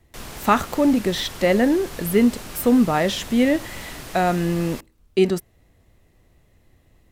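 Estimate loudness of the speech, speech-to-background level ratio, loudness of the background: −21.0 LKFS, 15.5 dB, −36.5 LKFS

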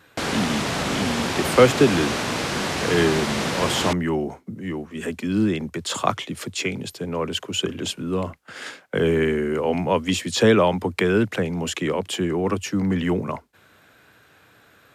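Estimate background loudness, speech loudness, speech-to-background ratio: −25.0 LKFS, −23.5 LKFS, 1.5 dB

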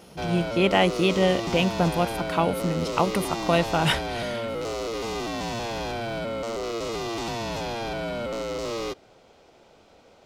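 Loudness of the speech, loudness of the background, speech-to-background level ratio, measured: −24.5 LKFS, −30.5 LKFS, 6.0 dB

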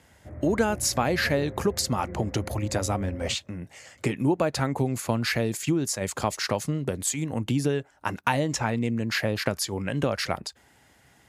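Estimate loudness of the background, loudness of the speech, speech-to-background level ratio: −40.0 LKFS, −27.0 LKFS, 13.0 dB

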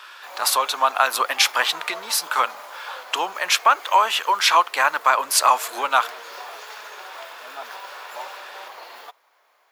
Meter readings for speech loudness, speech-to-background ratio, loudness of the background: −19.5 LKFS, 18.5 dB, −38.0 LKFS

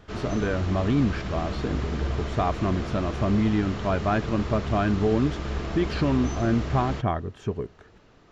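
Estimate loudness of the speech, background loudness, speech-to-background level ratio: −26.5 LKFS, −32.5 LKFS, 6.0 dB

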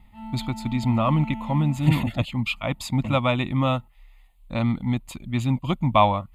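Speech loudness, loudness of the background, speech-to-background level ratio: −24.0 LKFS, −36.0 LKFS, 12.0 dB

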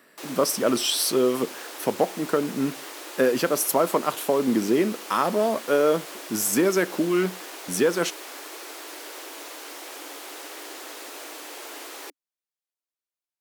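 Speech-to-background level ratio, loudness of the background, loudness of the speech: 13.5 dB, −37.5 LKFS, −24.0 LKFS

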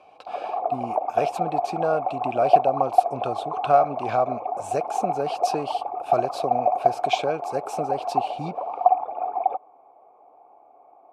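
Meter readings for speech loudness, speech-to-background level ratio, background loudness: −28.5 LKFS, −3.0 dB, −25.5 LKFS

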